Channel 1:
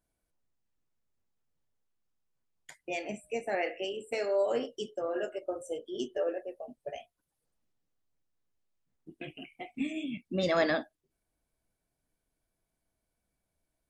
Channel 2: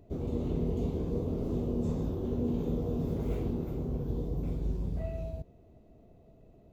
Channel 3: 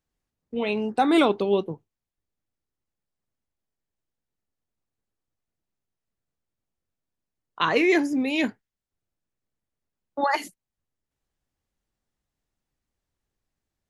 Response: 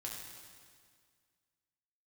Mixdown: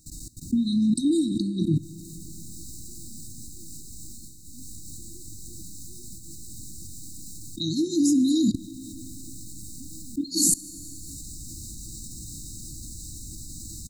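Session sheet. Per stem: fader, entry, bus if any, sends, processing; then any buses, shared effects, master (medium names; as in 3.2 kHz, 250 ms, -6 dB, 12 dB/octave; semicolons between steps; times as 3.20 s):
-5.0 dB, 0.00 s, no send, harmonic-percussive separation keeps harmonic; comb 5.1 ms, depth 46%
-18.0 dB, 0.65 s, no send, none
+2.0 dB, 0.00 s, send -5.5 dB, level rider gain up to 4.5 dB; LFO notch saw down 0.99 Hz 500–2000 Hz; level flattener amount 70%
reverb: on, RT60 1.9 s, pre-delay 4 ms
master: peaking EQ 7.8 kHz +12 dB 0.46 oct; level held to a coarse grid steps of 19 dB; brick-wall FIR band-stop 350–3700 Hz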